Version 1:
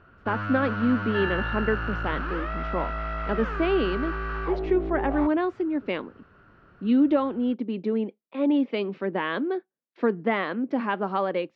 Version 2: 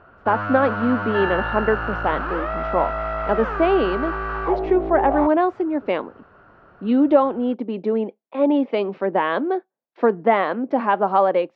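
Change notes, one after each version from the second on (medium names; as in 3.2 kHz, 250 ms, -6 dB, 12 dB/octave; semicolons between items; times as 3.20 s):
master: add peaking EQ 740 Hz +12 dB 1.6 oct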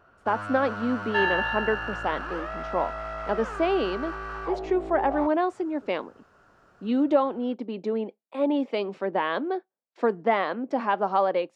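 speech -7.0 dB; first sound -10.0 dB; master: remove distance through air 280 m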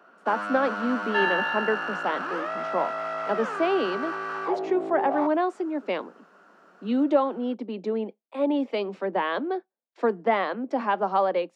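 first sound +4.0 dB; master: add steep high-pass 170 Hz 96 dB/octave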